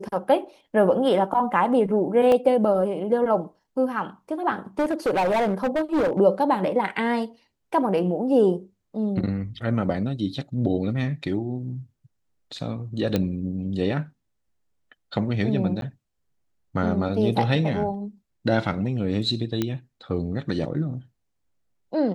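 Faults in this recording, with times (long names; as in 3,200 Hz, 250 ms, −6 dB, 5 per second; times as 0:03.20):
0:02.32: drop-out 2 ms
0:04.79–0:06.20: clipping −18.5 dBFS
0:13.16: click −10 dBFS
0:15.81–0:15.82: drop-out
0:19.62: click −11 dBFS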